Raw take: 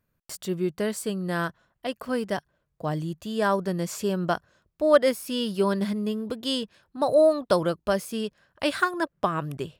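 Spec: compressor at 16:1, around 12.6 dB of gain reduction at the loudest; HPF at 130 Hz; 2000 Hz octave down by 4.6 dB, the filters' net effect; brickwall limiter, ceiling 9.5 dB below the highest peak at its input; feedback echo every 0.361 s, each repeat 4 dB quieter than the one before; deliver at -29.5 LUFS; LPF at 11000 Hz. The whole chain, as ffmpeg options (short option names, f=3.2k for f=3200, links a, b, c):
-af "highpass=130,lowpass=11k,equalizer=f=2k:t=o:g=-7,acompressor=threshold=-26dB:ratio=16,alimiter=level_in=0.5dB:limit=-24dB:level=0:latency=1,volume=-0.5dB,aecho=1:1:361|722|1083|1444|1805|2166|2527|2888|3249:0.631|0.398|0.25|0.158|0.0994|0.0626|0.0394|0.0249|0.0157,volume=3.5dB"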